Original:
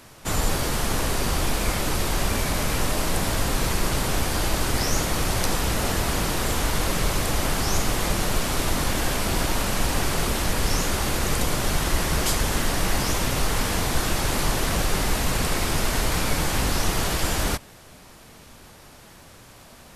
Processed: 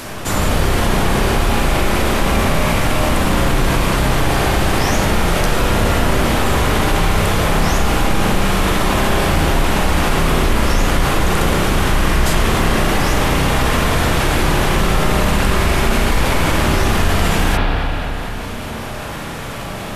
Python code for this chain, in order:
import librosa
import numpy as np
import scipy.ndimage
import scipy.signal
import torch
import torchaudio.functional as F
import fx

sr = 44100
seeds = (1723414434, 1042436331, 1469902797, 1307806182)

y = fx.rev_spring(x, sr, rt60_s=2.1, pass_ms=(31, 36, 49), chirp_ms=70, drr_db=-7.5)
y = fx.env_flatten(y, sr, amount_pct=50)
y = y * librosa.db_to_amplitude(-1.5)